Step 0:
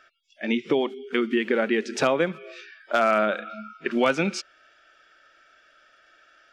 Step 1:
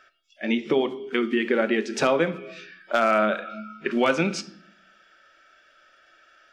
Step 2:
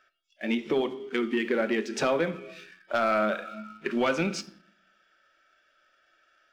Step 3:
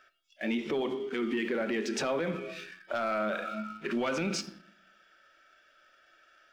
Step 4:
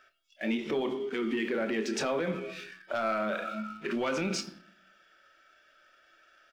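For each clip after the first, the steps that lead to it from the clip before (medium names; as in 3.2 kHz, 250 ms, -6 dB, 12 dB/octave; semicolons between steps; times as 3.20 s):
reverberation RT60 0.65 s, pre-delay 5 ms, DRR 10 dB
waveshaping leveller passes 1; trim -7 dB
peak limiter -27 dBFS, peak gain reduction 11 dB; trim +3.5 dB
doubling 27 ms -11 dB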